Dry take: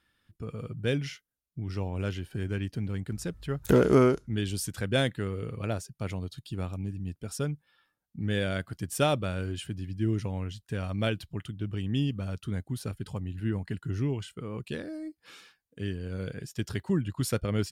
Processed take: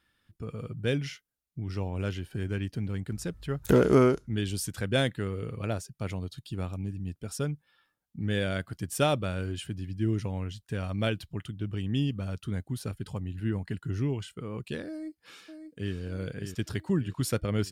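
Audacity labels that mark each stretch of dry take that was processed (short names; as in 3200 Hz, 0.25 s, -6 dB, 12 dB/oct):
14.890000	15.950000	echo throw 0.59 s, feedback 50%, level -7.5 dB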